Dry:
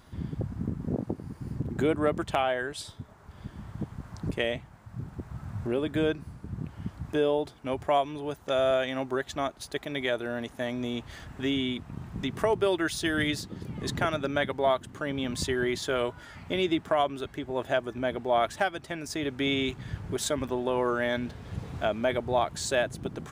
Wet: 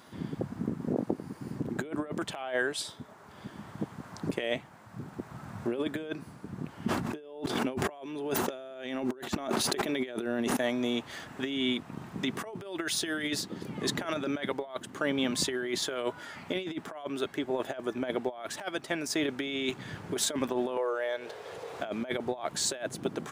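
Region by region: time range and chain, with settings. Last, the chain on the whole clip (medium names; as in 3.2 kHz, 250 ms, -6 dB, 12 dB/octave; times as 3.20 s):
6.83–10.57 s: small resonant body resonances 230/370/2700 Hz, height 8 dB + decay stretcher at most 21 dB/s
20.77–21.80 s: resonant low shelf 330 Hz -11.5 dB, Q 3 + compression 2:1, threshold -40 dBFS
whole clip: high-pass 220 Hz 12 dB/octave; compressor with a negative ratio -31 dBFS, ratio -0.5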